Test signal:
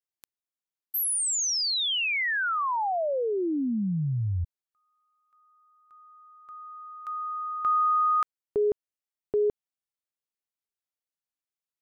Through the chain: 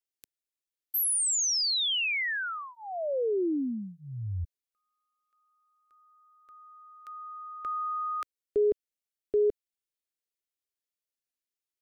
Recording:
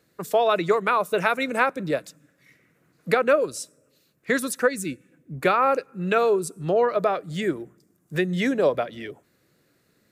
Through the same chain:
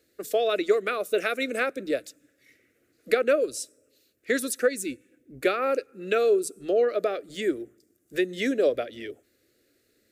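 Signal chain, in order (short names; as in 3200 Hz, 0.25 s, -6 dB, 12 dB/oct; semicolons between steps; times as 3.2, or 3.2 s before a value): fixed phaser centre 390 Hz, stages 4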